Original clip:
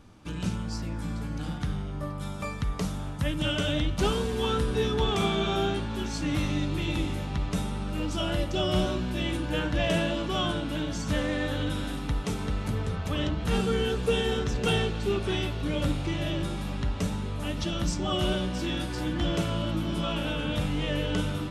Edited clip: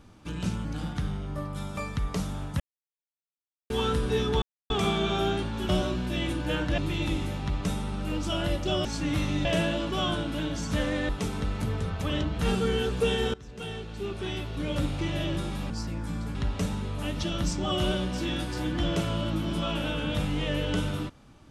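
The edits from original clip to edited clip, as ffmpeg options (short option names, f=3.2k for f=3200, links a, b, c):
-filter_complex "[0:a]asplit=13[a][b][c][d][e][f][g][h][i][j][k][l][m];[a]atrim=end=0.652[n];[b]atrim=start=1.298:end=3.25,asetpts=PTS-STARTPTS,afade=t=out:st=1.948:d=0.004:c=hsin[o];[c]atrim=start=3.25:end=4.35,asetpts=PTS-STARTPTS,volume=0[p];[d]atrim=start=4.35:end=5.07,asetpts=PTS-STARTPTS,afade=t=in:d=0.004:c=hsin,afade=t=out:st=0.716:d=0.004:c=hsin,apad=pad_dur=0.28[q];[e]atrim=start=5.07:end=6.062,asetpts=PTS-STARTPTS,afade=t=in:d=0.004:c=hsin[r];[f]atrim=start=8.728:end=9.822[s];[g]atrim=start=6.658:end=8.732[t];[h]atrim=start=6.058:end=6.662[u];[i]atrim=start=9.818:end=11.462[v];[j]atrim=start=12.148:end=14.4,asetpts=PTS-STARTPTS,afade=t=out:st=2.248:d=0.004:c=hsin:silence=0.0891251[w];[k]atrim=start=14.4:end=16.762,asetpts=PTS-STARTPTS,afade=t=in:d=1.71:silence=0.0891251[x];[l]atrim=start=0.648:end=1.302[y];[m]atrim=start=16.758[z];[o][p][q][r]concat=n=4:v=0:a=1[aa];[n][aa]acrossfade=d=0.004:c1=hsin:c2=hsin[ab];[ab][s]acrossfade=d=0.004:c1=hsin:c2=hsin[ac];[ac][t]acrossfade=d=0.004:c1=hsin:c2=hsin[ad];[ad][u]acrossfade=d=0.004:c1=hsin:c2=hsin[ae];[ae][v]acrossfade=d=0.004:c1=hsin:c2=hsin[af];[w][x]concat=n=2:v=0:a=1[ag];[af][ag]acrossfade=d=0.004:c1=hsin:c2=hsin[ah];[ah][y]acrossfade=d=0.004:c1=hsin:c2=hsin[ai];[ai][z]acrossfade=d=0.004:c1=hsin:c2=hsin"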